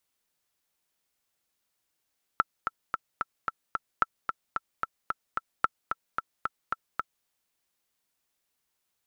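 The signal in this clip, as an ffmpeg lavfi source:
-f lavfi -i "aevalsrc='pow(10,(-8.5-6.5*gte(mod(t,6*60/222),60/222))/20)*sin(2*PI*1330*mod(t,60/222))*exp(-6.91*mod(t,60/222)/0.03)':d=4.86:s=44100"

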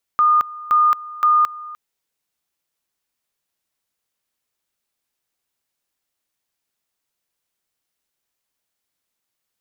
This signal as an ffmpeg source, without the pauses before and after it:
-f lavfi -i "aevalsrc='pow(10,(-11-19.5*gte(mod(t,0.52),0.22))/20)*sin(2*PI*1220*t)':d=1.56:s=44100"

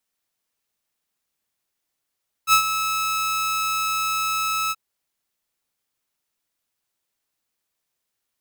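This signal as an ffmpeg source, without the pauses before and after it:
-f lavfi -i "aevalsrc='0.376*(2*mod(1300*t,1)-1)':d=2.279:s=44100,afade=t=in:d=0.06,afade=t=out:st=0.06:d=0.09:silence=0.299,afade=t=out:st=2.24:d=0.039"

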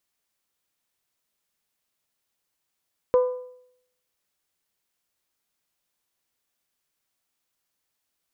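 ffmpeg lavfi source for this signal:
-f lavfi -i "aevalsrc='0.224*pow(10,-3*t/0.71)*sin(2*PI*501*t)+0.0562*pow(10,-3*t/0.577)*sin(2*PI*1002*t)+0.0141*pow(10,-3*t/0.546)*sin(2*PI*1202.4*t)+0.00355*pow(10,-3*t/0.511)*sin(2*PI*1503*t)+0.000891*pow(10,-3*t/0.468)*sin(2*PI*2004*t)':d=1.55:s=44100"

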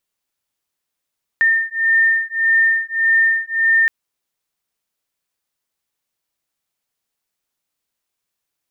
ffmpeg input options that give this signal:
-f lavfi -i "aevalsrc='0.158*(sin(2*PI*1810*t)+sin(2*PI*1811.7*t))':d=2.47:s=44100"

